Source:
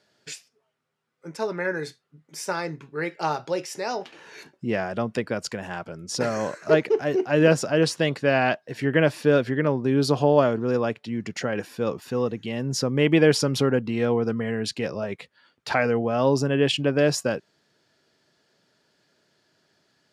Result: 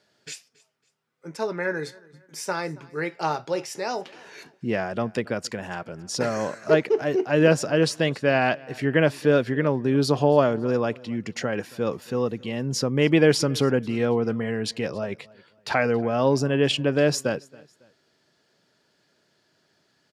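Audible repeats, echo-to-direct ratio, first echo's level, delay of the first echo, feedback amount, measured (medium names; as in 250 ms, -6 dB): 2, -23.0 dB, -23.5 dB, 276 ms, 35%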